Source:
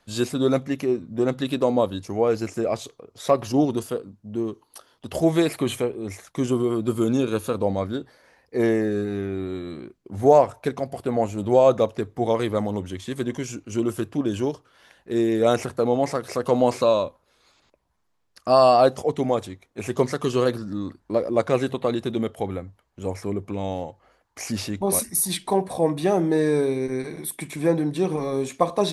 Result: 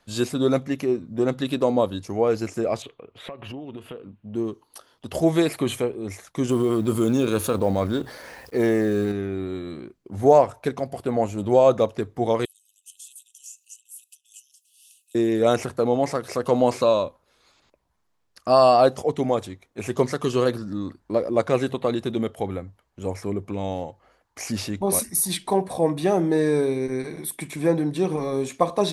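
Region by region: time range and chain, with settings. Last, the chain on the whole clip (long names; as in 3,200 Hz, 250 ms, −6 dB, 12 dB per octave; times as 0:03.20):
0:02.82–0:04.34: high shelf with overshoot 4,000 Hz −12.5 dB, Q 3 + downward compressor 16 to 1, threshold −32 dBFS + one half of a high-frequency compander encoder only
0:06.49–0:09.12: mu-law and A-law mismatch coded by A + high-shelf EQ 9,000 Hz +3.5 dB + envelope flattener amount 50%
0:12.45–0:15.15: high shelf with overshoot 6,000 Hz +13.5 dB, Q 1.5 + downward compressor 5 to 1, threshold −38 dBFS + linear-phase brick-wall high-pass 2,500 Hz
whole clip: no processing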